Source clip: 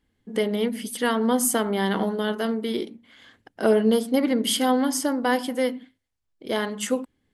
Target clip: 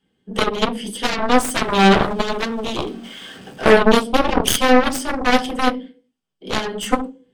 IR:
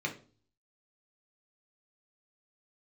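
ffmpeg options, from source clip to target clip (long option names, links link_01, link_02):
-filter_complex "[0:a]asettb=1/sr,asplit=3[link_01][link_02][link_03];[link_01]atrim=end=1.644[link_04];[link_02]atrim=start=1.64:end=3.64,asetpts=PTS-STARTPTS,afade=type=in:duration=0.004:curve=qsin,afade=type=out:start_time=1.996:duration=0.004:curve=qsin,aeval=exprs='val(0)+0.5*0.0119*sgn(val(0))':channel_layout=same[link_05];[link_03]atrim=start=3.636[link_06];[link_04][link_05]acrossfade=duration=0.004:curve1=hsin:curve2=qsin[link_07];[link_07][link_06]acrossfade=duration=0.004:curve1=qsin:curve2=hsin[link_08];[1:a]atrim=start_sample=2205,asetrate=57330,aresample=44100[link_09];[link_08][link_09]afir=irnorm=-1:irlink=0,aeval=exprs='0.596*(cos(1*acos(clip(val(0)/0.596,-1,1)))-cos(1*PI/2))+0.075*(cos(4*acos(clip(val(0)/0.596,-1,1)))-cos(4*PI/2))+0.106*(cos(5*acos(clip(val(0)/0.596,-1,1)))-cos(5*PI/2))+0.266*(cos(7*acos(clip(val(0)/0.596,-1,1)))-cos(7*PI/2))+0.0266*(cos(8*acos(clip(val(0)/0.596,-1,1)))-cos(8*PI/2))':channel_layout=same,volume=1dB"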